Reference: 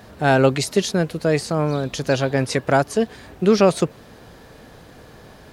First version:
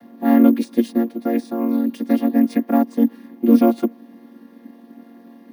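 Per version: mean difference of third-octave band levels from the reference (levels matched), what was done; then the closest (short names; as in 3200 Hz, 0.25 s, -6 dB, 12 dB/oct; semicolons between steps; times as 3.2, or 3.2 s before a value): 12.5 dB: chord vocoder minor triad, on A#3; resonant low shelf 320 Hz +7 dB, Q 1.5; careless resampling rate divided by 3×, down filtered, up hold; gain -2.5 dB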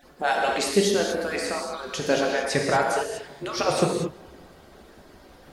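7.0 dB: median-filter separation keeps percussive; on a send: tape echo 0.185 s, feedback 70%, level -23 dB; on the sum: non-linear reverb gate 0.26 s flat, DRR -1 dB; gain -3.5 dB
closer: second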